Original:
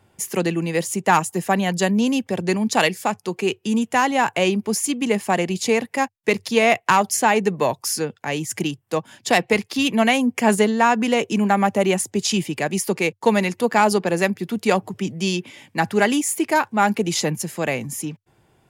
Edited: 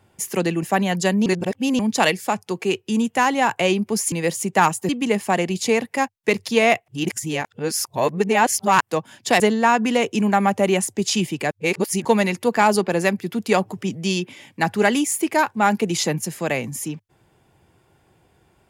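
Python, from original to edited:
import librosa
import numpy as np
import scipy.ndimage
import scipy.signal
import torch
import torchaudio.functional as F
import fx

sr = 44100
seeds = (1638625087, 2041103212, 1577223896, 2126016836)

y = fx.edit(x, sr, fx.move(start_s=0.63, length_s=0.77, to_s=4.89),
    fx.reverse_span(start_s=2.03, length_s=0.53),
    fx.reverse_span(start_s=6.88, length_s=1.93),
    fx.cut(start_s=9.4, length_s=1.17),
    fx.reverse_span(start_s=12.68, length_s=0.54), tone=tone)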